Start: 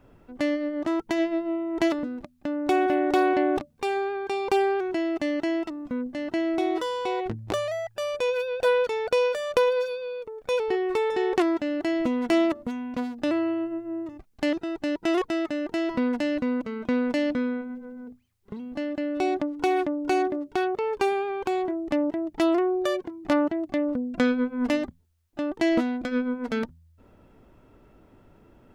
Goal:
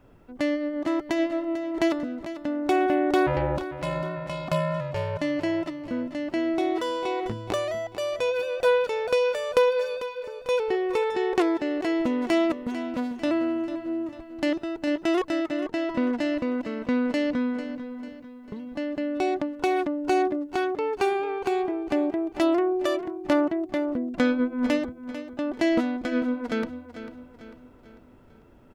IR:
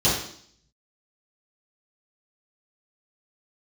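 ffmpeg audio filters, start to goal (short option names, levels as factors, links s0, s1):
-filter_complex "[0:a]asplit=3[s0][s1][s2];[s0]afade=t=out:st=3.26:d=0.02[s3];[s1]aeval=exprs='val(0)*sin(2*PI*230*n/s)':c=same,afade=t=in:st=3.26:d=0.02,afade=t=out:st=5.19:d=0.02[s4];[s2]afade=t=in:st=5.19:d=0.02[s5];[s3][s4][s5]amix=inputs=3:normalize=0,asettb=1/sr,asplit=3[s6][s7][s8];[s6]atrim=end=15.484[s9];[s7]atrim=start=15.48:end=16.21,asetpts=PTS-STARTPTS,afade=t=in:d=0.004:c=qsin,afade=t=out:st=0.726:d=0.004:c=qsin,highshelf=f=7100:g=-10[s10];[s8]atrim=start=16.206[s11];[s9][s10]acrossfade=d=0.004:c1=hsin:c2=qsin[s12];[s12][s11]acrossfade=d=0.004:c1=qsin:c2=hsin,aecho=1:1:446|892|1338|1784|2230:0.237|0.109|0.0502|0.0231|0.0106"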